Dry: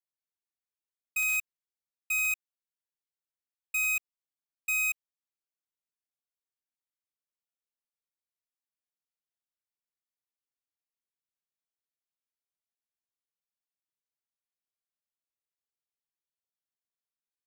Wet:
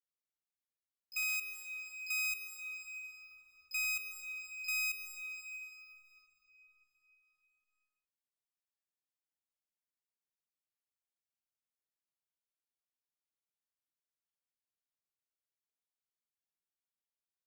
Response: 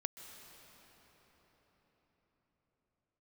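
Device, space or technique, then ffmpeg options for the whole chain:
shimmer-style reverb: -filter_complex "[0:a]asettb=1/sr,asplit=3[s0][s1][s2];[s0]atrim=end=1.244[s3];[s1]atrim=start=1.24:end=2.29,asetpts=PTS-STARTPTS,afade=t=in:d=0.004:c=qsin,afade=t=out:st=1.046:d=0.004:c=qsin,highpass=280[s4];[s2]atrim=start=2.286[s5];[s3][s4]acrossfade=d=0.004:c1=hsin:c2=qsin[s6];[s6][s5]acrossfade=d=0.004:c1=qsin:c2=hsin,asplit=2[s7][s8];[s8]asetrate=88200,aresample=44100,atempo=0.5,volume=0.251[s9];[s7][s9]amix=inputs=2:normalize=0[s10];[1:a]atrim=start_sample=2205[s11];[s10][s11]afir=irnorm=-1:irlink=0,volume=0.562"

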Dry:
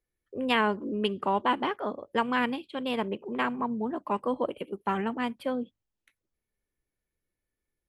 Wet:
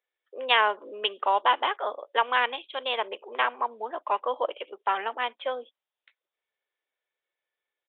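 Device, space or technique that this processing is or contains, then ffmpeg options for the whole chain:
musical greeting card: -af "aresample=8000,aresample=44100,highpass=f=530:w=0.5412,highpass=f=530:w=1.3066,equalizer=f=3600:t=o:w=0.4:g=6,volume=1.68"

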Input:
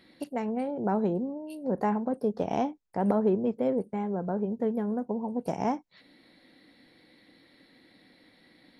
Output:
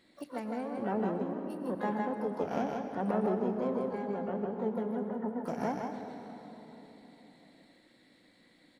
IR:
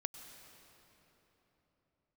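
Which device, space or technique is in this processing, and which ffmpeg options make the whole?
shimmer-style reverb: -filter_complex "[0:a]asplit=3[s0][s1][s2];[s0]afade=t=out:st=4.79:d=0.02[s3];[s1]highpass=f=51:w=0.5412,highpass=f=51:w=1.3066,afade=t=in:st=4.79:d=0.02,afade=t=out:st=5.38:d=0.02[s4];[s2]afade=t=in:st=5.38:d=0.02[s5];[s3][s4][s5]amix=inputs=3:normalize=0,bandreject=f=60:t=h:w=6,bandreject=f=120:t=h:w=6,bandreject=f=180:t=h:w=6,aecho=1:1:156:0.668,asplit=2[s6][s7];[s7]asetrate=88200,aresample=44100,atempo=0.5,volume=0.251[s8];[s6][s8]amix=inputs=2:normalize=0[s9];[1:a]atrim=start_sample=2205[s10];[s9][s10]afir=irnorm=-1:irlink=0,volume=0.596"

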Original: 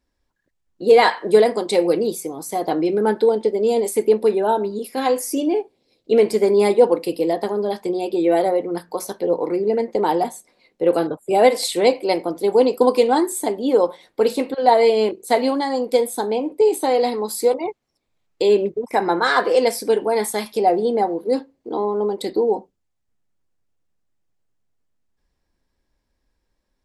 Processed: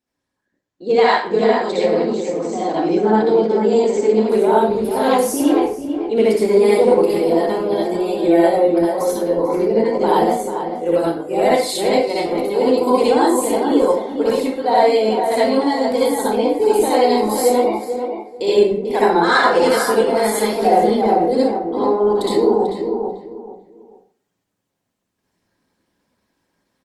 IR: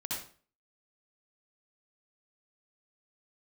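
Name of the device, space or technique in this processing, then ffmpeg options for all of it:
far-field microphone of a smart speaker: -filter_complex "[0:a]asplit=2[s0][s1];[s1]adelay=442,lowpass=f=2000:p=1,volume=0.501,asplit=2[s2][s3];[s3]adelay=442,lowpass=f=2000:p=1,volume=0.24,asplit=2[s4][s5];[s5]adelay=442,lowpass=f=2000:p=1,volume=0.24[s6];[s0][s2][s4][s6]amix=inputs=4:normalize=0[s7];[1:a]atrim=start_sample=2205[s8];[s7][s8]afir=irnorm=-1:irlink=0,highpass=150,dynaudnorm=f=220:g=9:m=2.66,volume=0.891" -ar 48000 -c:a libopus -b:a 20k

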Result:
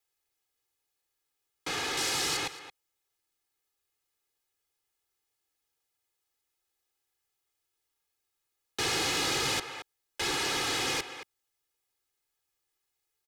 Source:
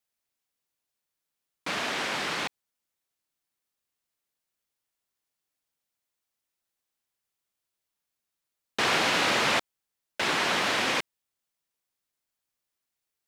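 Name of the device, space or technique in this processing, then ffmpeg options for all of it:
one-band saturation: -filter_complex "[0:a]asettb=1/sr,asplit=3[s0][s1][s2];[s0]atrim=end=1.974[s3];[s1]atrim=start=1.97:end=2.37,asetpts=PTS-STARTPTS,afade=t=in:d=0.004:c=qsin,afade=t=out:st=0.396:d=0.004:c=qsin,bass=f=250:g=2,treble=f=4000:g=9[s4];[s2]atrim=start=2.366[s5];[s3][s4]acrossfade=d=0.004:c1=hsin:c2=qsin[s6];[s6][s5]acrossfade=d=0.004:c1=qsin:c2=hsin,aecho=1:1:2.4:0.87,aecho=1:1:223:0.119,acrossover=split=290|4200[s7][s8][s9];[s8]asoftclip=type=tanh:threshold=0.0237[s10];[s7][s10][s9]amix=inputs=3:normalize=0"

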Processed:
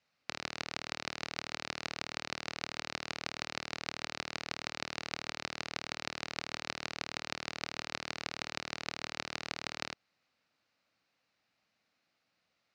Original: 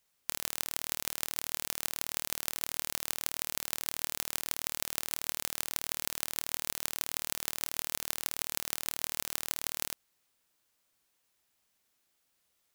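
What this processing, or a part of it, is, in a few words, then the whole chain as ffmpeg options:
guitar cabinet: -af "highpass=110,equalizer=f=390:t=q:w=4:g=-9,equalizer=f=970:t=q:w=4:g=-6,equalizer=f=1700:t=q:w=4:g=-3,equalizer=f=3300:t=q:w=4:g=-9,lowpass=f=4400:w=0.5412,lowpass=f=4400:w=1.3066,volume=1.78"

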